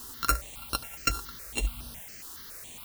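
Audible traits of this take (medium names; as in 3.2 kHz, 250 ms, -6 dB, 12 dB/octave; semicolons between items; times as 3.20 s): a buzz of ramps at a fixed pitch in blocks of 32 samples; random-step tremolo, depth 90%; a quantiser's noise floor 10-bit, dither triangular; notches that jump at a steady rate 7.2 Hz 610–7200 Hz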